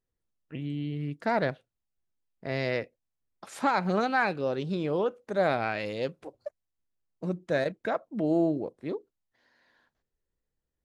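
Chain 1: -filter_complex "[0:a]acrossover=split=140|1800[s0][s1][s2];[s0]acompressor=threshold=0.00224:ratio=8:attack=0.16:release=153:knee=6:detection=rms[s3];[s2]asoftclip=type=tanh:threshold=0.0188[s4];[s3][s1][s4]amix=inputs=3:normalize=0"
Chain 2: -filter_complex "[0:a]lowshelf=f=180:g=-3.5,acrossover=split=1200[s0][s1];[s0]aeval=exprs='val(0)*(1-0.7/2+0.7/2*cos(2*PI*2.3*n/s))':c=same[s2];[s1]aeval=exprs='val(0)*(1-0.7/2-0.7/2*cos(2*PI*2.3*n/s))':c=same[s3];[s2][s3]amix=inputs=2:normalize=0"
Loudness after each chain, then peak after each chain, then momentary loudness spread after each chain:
-30.5 LUFS, -34.0 LUFS; -14.0 dBFS, -16.5 dBFS; 17 LU, 17 LU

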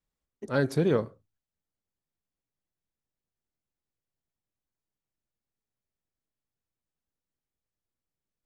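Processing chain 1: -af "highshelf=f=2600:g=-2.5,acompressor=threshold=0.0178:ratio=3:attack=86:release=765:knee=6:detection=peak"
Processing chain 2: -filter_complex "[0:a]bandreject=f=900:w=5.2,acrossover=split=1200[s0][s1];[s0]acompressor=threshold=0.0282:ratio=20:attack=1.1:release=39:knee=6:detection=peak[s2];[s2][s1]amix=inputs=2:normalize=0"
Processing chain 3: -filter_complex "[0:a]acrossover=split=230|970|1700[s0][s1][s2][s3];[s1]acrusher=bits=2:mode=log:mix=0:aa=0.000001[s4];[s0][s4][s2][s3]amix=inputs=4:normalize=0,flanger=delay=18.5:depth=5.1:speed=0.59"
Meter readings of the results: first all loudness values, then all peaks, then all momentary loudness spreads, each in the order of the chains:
-35.0 LUFS, -36.5 LUFS, -30.0 LUFS; -17.5 dBFS, -21.0 dBFS, -14.5 dBFS; 14 LU, 12 LU, 8 LU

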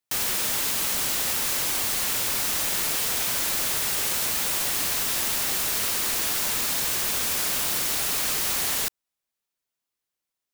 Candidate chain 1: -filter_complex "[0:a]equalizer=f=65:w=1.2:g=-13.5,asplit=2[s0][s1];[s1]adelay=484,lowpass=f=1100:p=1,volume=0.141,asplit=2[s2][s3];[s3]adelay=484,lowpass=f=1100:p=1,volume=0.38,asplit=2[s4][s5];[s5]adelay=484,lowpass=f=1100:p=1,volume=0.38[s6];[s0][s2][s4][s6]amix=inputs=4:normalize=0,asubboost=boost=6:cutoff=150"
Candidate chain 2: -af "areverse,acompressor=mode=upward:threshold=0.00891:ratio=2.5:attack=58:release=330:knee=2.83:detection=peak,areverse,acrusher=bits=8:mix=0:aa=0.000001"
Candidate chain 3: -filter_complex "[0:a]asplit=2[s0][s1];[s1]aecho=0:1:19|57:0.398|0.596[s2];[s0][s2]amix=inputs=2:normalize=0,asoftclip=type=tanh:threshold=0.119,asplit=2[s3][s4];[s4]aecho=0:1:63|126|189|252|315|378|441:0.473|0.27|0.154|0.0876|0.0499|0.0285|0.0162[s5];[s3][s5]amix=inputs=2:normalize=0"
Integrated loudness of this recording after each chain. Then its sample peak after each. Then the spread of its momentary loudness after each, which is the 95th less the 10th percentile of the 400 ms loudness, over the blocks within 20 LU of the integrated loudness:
-23.0 LUFS, -22.5 LUFS, -21.5 LUFS; -12.5 dBFS, -3.0 dBFS, -14.0 dBFS; 0 LU, 0 LU, 0 LU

